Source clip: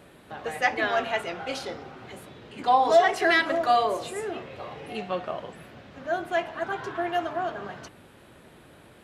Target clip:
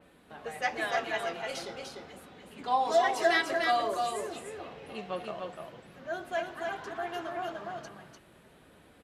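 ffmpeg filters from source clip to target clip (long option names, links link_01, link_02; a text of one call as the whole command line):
ffmpeg -i in.wav -filter_complex "[0:a]flanger=delay=3.9:depth=2.3:regen=-49:speed=0.45:shape=sinusoidal,asplit=2[link_01][link_02];[link_02]aecho=0:1:297:0.631[link_03];[link_01][link_03]amix=inputs=2:normalize=0,adynamicequalizer=threshold=0.00562:dfrequency=4100:dqfactor=0.7:tfrequency=4100:tqfactor=0.7:attack=5:release=100:ratio=0.375:range=3:mode=boostabove:tftype=highshelf,volume=-3.5dB" out.wav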